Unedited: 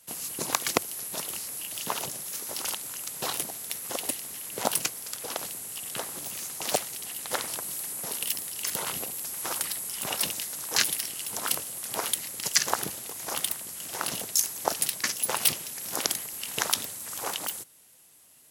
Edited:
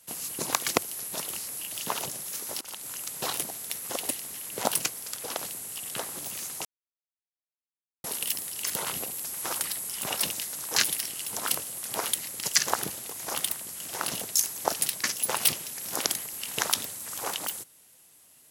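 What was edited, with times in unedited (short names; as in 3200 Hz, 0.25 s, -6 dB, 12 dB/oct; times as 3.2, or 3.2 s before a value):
2.61–2.9 fade in, from -23 dB
6.65–8.04 mute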